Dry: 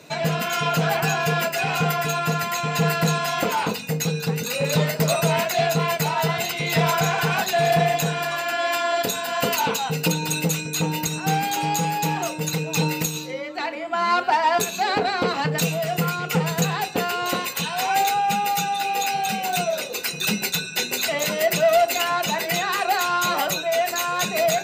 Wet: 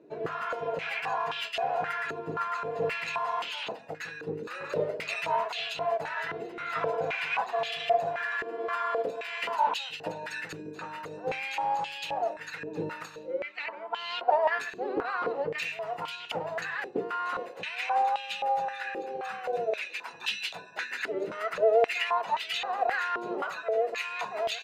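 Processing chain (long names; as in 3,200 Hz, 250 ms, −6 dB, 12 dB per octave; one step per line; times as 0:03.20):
pitch-shifted copies added −7 semitones −5 dB
band-pass on a step sequencer 3.8 Hz 380–3,100 Hz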